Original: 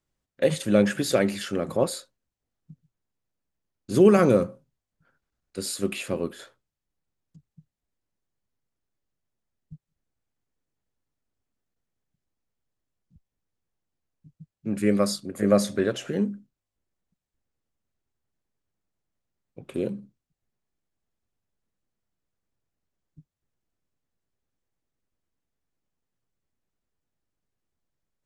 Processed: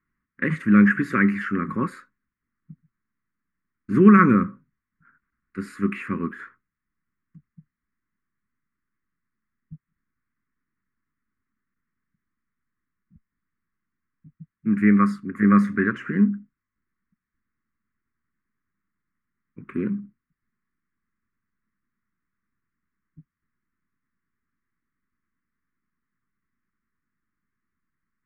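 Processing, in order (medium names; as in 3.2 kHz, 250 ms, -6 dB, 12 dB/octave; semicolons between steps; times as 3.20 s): FFT filter 130 Hz 0 dB, 220 Hz +9 dB, 400 Hz -3 dB, 690 Hz -28 dB, 1.1 kHz +10 dB, 2 kHz +11 dB, 3.5 kHz -20 dB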